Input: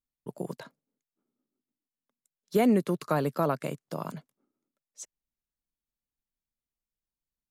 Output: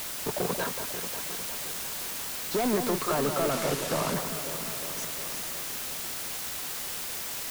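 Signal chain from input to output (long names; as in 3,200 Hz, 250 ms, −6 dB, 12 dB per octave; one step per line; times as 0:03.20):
downward compressor, threshold −31 dBFS, peak gain reduction 12 dB
mid-hump overdrive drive 30 dB, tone 1,500 Hz, clips at −19.5 dBFS
bit-depth reduction 6 bits, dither triangular
delay that swaps between a low-pass and a high-pass 179 ms, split 1,500 Hz, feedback 80%, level −7 dB
0:03.51–0:04.14: bad sample-rate conversion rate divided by 2×, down none, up hold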